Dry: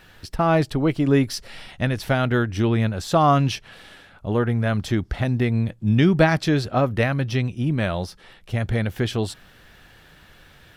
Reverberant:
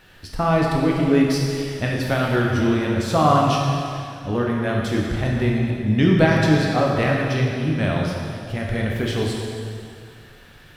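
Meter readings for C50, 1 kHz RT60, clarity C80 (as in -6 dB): 0.0 dB, 2.3 s, 1.5 dB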